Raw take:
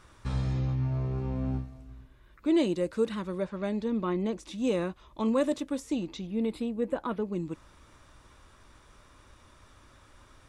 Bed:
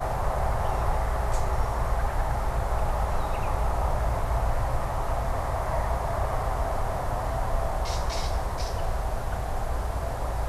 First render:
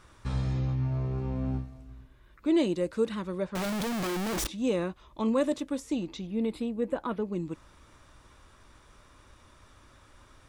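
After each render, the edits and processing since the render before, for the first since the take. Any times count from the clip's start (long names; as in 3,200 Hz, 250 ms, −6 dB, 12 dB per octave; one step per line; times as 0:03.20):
0:03.55–0:04.47: sign of each sample alone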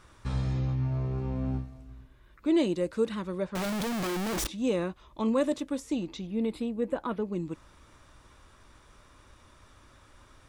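no processing that can be heard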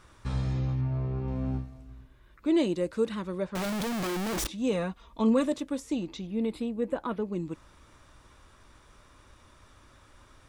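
0:00.81–0:01.28: high-frequency loss of the air 140 metres
0:04.72–0:05.46: comb filter 4.3 ms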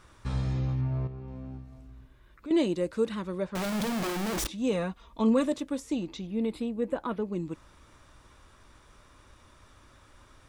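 0:01.07–0:02.51: downward compressor 2 to 1, threshold −45 dBFS
0:03.66–0:04.32: flutter between parallel walls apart 8.9 metres, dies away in 0.34 s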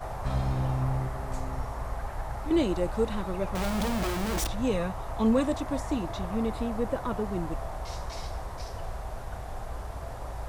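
mix in bed −8 dB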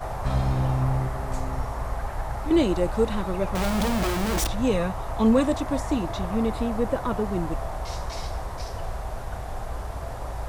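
level +4.5 dB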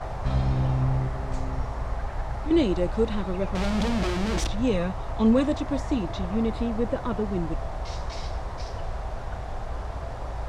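low-pass filter 5,500 Hz 12 dB per octave
dynamic equaliser 990 Hz, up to −4 dB, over −37 dBFS, Q 0.71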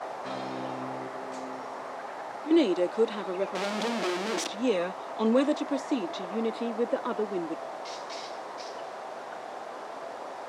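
high-pass filter 270 Hz 24 dB per octave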